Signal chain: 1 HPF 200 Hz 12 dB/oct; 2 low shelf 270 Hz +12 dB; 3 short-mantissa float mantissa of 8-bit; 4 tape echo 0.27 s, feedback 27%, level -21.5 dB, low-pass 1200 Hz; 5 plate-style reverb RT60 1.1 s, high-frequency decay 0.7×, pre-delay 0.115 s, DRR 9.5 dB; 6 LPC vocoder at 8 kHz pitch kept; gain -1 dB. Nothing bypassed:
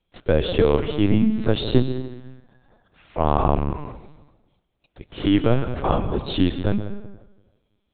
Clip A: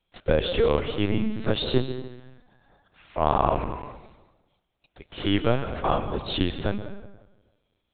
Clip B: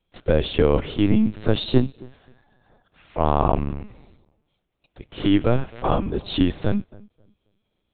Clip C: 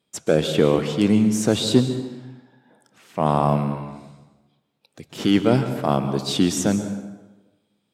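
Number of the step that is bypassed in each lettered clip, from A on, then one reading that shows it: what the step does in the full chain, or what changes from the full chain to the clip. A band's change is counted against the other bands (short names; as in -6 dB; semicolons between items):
2, 250 Hz band -6.5 dB; 5, momentary loudness spread change -8 LU; 6, 4 kHz band +3.0 dB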